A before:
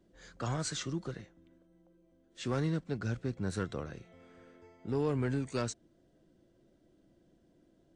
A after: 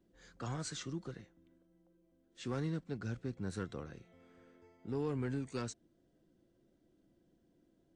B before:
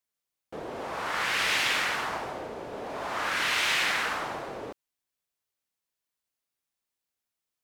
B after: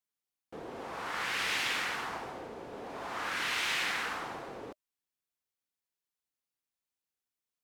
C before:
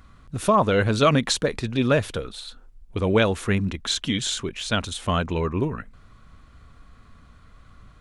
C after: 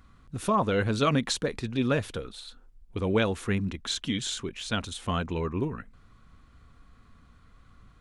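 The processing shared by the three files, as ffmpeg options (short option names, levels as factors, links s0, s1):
-af "equalizer=f=250:w=1.3:g=2,bandreject=f=610:w=12,volume=0.501"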